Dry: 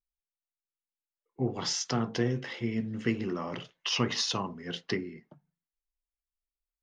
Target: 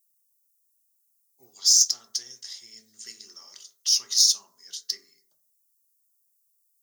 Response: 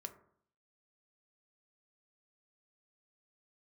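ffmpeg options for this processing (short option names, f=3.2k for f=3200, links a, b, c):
-filter_complex "[0:a]aexciter=amount=9.3:drive=8.9:freq=4.2k,aderivative[a];[1:a]atrim=start_sample=2205,afade=t=out:st=0.26:d=0.01,atrim=end_sample=11907[b];[a][b]afir=irnorm=-1:irlink=0"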